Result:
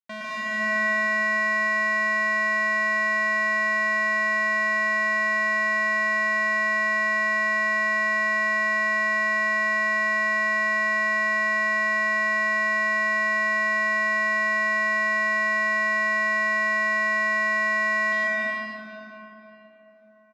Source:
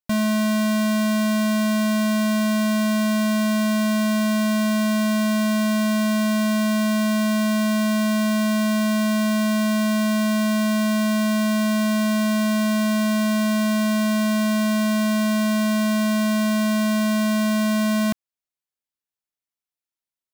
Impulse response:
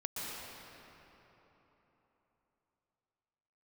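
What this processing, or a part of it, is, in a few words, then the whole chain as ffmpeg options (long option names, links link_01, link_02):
station announcement: -filter_complex "[0:a]highpass=450,lowpass=3700,equalizer=frequency=2000:width_type=o:width=0.43:gain=7,aecho=1:1:113.7|148.7|212.8:0.708|0.708|0.631[link_01];[1:a]atrim=start_sample=2205[link_02];[link_01][link_02]afir=irnorm=-1:irlink=0,volume=-5dB"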